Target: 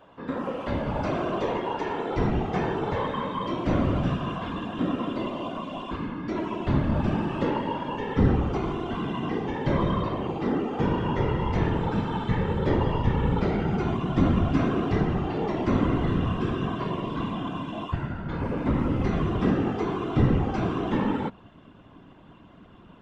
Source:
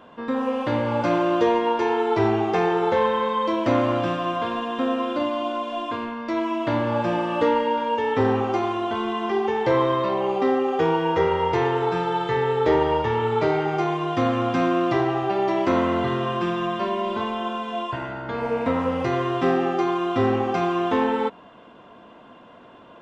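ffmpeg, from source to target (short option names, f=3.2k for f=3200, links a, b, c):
-af "asubboost=boost=7:cutoff=180,afftfilt=real='hypot(re,im)*cos(2*PI*random(0))':imag='hypot(re,im)*sin(2*PI*random(1))':win_size=512:overlap=0.75"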